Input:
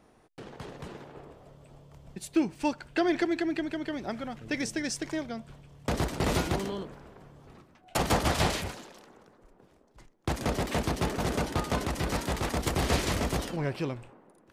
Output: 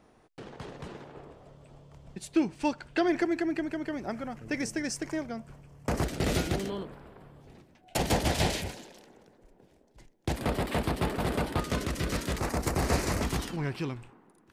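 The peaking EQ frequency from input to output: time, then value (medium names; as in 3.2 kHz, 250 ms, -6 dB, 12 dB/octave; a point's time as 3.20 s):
peaking EQ -10.5 dB 0.53 oct
14 kHz
from 3.08 s 3.6 kHz
from 6.03 s 1 kHz
from 6.70 s 6.2 kHz
from 7.41 s 1.2 kHz
from 10.36 s 6.2 kHz
from 11.60 s 830 Hz
from 12.38 s 3.3 kHz
from 13.22 s 570 Hz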